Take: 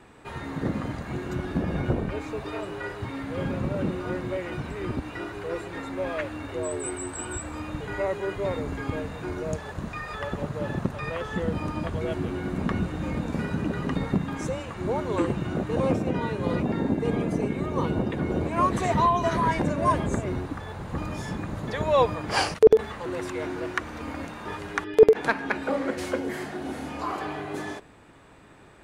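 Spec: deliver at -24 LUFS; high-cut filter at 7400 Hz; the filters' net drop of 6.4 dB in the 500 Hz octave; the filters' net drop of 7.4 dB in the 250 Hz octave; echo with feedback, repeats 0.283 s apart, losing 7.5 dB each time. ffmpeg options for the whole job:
-af "lowpass=7.4k,equalizer=f=250:t=o:g=-9,equalizer=f=500:t=o:g=-5,aecho=1:1:283|566|849|1132|1415:0.422|0.177|0.0744|0.0312|0.0131,volume=7dB"

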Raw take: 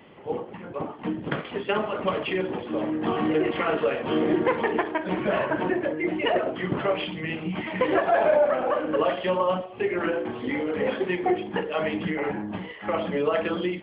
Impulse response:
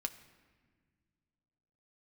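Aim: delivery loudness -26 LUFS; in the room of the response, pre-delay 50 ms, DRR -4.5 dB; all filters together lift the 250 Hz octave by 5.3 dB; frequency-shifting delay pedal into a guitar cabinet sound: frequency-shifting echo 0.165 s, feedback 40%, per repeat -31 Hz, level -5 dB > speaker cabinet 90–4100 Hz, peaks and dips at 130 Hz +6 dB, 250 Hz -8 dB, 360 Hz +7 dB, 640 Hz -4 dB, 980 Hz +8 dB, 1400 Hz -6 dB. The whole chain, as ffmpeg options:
-filter_complex "[0:a]equalizer=f=250:t=o:g=5.5,asplit=2[a][b];[1:a]atrim=start_sample=2205,adelay=50[c];[b][c]afir=irnorm=-1:irlink=0,volume=5dB[d];[a][d]amix=inputs=2:normalize=0,asplit=6[e][f][g][h][i][j];[f]adelay=165,afreqshift=-31,volume=-5dB[k];[g]adelay=330,afreqshift=-62,volume=-13dB[l];[h]adelay=495,afreqshift=-93,volume=-20.9dB[m];[i]adelay=660,afreqshift=-124,volume=-28.9dB[n];[j]adelay=825,afreqshift=-155,volume=-36.8dB[o];[e][k][l][m][n][o]amix=inputs=6:normalize=0,highpass=90,equalizer=f=130:t=q:w=4:g=6,equalizer=f=250:t=q:w=4:g=-8,equalizer=f=360:t=q:w=4:g=7,equalizer=f=640:t=q:w=4:g=-4,equalizer=f=980:t=q:w=4:g=8,equalizer=f=1.4k:t=q:w=4:g=-6,lowpass=f=4.1k:w=0.5412,lowpass=f=4.1k:w=1.3066,volume=-9.5dB"

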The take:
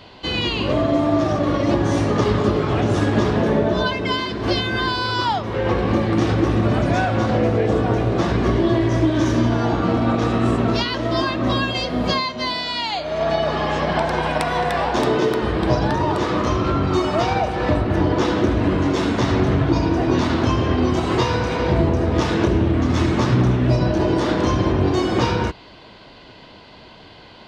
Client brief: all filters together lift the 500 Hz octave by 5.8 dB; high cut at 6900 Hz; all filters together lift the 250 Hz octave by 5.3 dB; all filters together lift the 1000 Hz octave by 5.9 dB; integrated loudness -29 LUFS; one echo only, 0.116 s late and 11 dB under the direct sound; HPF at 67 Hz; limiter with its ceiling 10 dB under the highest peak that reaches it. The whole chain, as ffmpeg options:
-af "highpass=67,lowpass=6.9k,equalizer=f=250:t=o:g=5,equalizer=f=500:t=o:g=4.5,equalizer=f=1k:t=o:g=5.5,alimiter=limit=-10dB:level=0:latency=1,aecho=1:1:116:0.282,volume=-10.5dB"

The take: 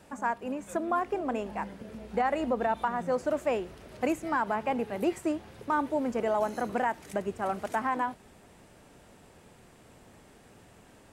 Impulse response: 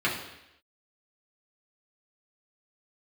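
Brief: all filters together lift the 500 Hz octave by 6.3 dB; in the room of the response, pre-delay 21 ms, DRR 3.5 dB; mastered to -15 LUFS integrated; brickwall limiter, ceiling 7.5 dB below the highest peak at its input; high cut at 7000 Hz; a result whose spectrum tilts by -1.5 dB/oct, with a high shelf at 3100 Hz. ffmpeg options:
-filter_complex "[0:a]lowpass=7k,equalizer=f=500:t=o:g=7.5,highshelf=f=3.1k:g=7.5,alimiter=limit=-19dB:level=0:latency=1,asplit=2[a][b];[1:a]atrim=start_sample=2205,adelay=21[c];[b][c]afir=irnorm=-1:irlink=0,volume=-16dB[d];[a][d]amix=inputs=2:normalize=0,volume=13.5dB"

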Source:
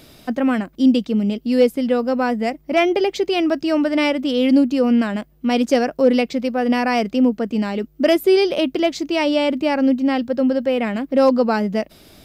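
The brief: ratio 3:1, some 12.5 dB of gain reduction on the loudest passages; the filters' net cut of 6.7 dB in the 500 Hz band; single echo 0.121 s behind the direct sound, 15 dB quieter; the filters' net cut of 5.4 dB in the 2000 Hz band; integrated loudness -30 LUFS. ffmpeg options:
-af "equalizer=f=500:t=o:g=-8,equalizer=f=2k:t=o:g=-6.5,acompressor=threshold=-30dB:ratio=3,aecho=1:1:121:0.178,volume=1dB"

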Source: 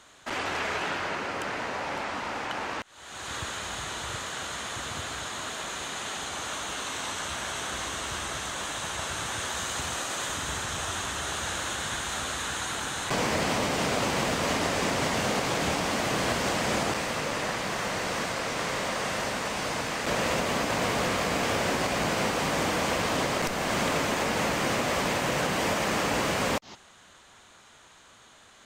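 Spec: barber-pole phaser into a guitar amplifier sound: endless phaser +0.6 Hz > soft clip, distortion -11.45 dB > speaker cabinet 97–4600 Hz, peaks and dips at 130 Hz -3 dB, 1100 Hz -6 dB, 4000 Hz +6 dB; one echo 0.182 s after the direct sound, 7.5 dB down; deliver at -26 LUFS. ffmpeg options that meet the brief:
-filter_complex "[0:a]aecho=1:1:182:0.422,asplit=2[a][b];[b]afreqshift=0.6[c];[a][c]amix=inputs=2:normalize=1,asoftclip=threshold=-29.5dB,highpass=97,equalizer=f=130:t=q:w=4:g=-3,equalizer=f=1.1k:t=q:w=4:g=-6,equalizer=f=4k:t=q:w=4:g=6,lowpass=f=4.6k:w=0.5412,lowpass=f=4.6k:w=1.3066,volume=9dB"

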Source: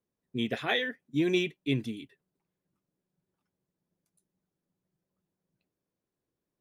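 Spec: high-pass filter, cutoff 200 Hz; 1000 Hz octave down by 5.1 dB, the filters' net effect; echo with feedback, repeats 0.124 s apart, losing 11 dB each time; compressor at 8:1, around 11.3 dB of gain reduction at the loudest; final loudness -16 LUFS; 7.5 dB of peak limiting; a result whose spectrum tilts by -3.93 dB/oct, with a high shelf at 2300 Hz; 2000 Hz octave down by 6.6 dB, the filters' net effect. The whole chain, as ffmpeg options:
-af "highpass=200,equalizer=f=1k:t=o:g=-6.5,equalizer=f=2k:t=o:g=-4.5,highshelf=f=2.3k:g=-3.5,acompressor=threshold=-36dB:ratio=8,alimiter=level_in=9.5dB:limit=-24dB:level=0:latency=1,volume=-9.5dB,aecho=1:1:124|248|372:0.282|0.0789|0.0221,volume=28dB"

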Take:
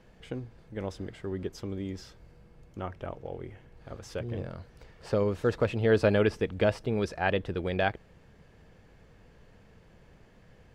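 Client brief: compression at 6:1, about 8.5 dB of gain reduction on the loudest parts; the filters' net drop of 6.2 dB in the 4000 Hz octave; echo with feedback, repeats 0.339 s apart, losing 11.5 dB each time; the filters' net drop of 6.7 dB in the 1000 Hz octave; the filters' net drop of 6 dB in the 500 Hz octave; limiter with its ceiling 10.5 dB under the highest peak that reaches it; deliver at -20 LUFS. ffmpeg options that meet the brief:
-af "equalizer=f=500:t=o:g=-5.5,equalizer=f=1k:t=o:g=-7,equalizer=f=4k:t=o:g=-8,acompressor=threshold=-32dB:ratio=6,alimiter=level_in=8dB:limit=-24dB:level=0:latency=1,volume=-8dB,aecho=1:1:339|678|1017:0.266|0.0718|0.0194,volume=23dB"

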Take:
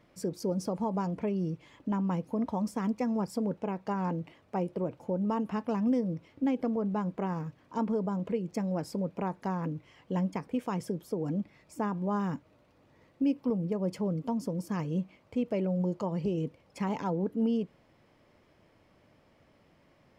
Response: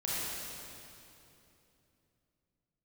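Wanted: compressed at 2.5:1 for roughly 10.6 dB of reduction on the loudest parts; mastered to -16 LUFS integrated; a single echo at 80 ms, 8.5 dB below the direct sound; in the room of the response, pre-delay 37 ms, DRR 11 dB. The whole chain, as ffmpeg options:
-filter_complex "[0:a]acompressor=threshold=-41dB:ratio=2.5,aecho=1:1:80:0.376,asplit=2[a][b];[1:a]atrim=start_sample=2205,adelay=37[c];[b][c]afir=irnorm=-1:irlink=0,volume=-17.5dB[d];[a][d]amix=inputs=2:normalize=0,volume=24.5dB"

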